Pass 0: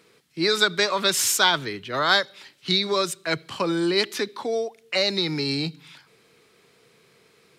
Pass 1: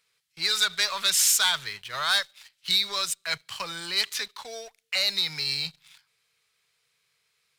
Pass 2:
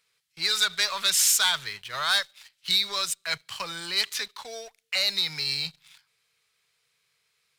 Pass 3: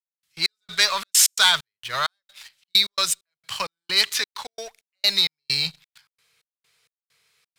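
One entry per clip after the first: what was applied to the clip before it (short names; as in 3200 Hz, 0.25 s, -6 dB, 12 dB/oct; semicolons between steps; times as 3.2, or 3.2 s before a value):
sample leveller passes 2; passive tone stack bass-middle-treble 10-0-10; gain -4.5 dB
nothing audible
step gate "..xx..xxx.x.xx" 131 bpm -60 dB; gain +6.5 dB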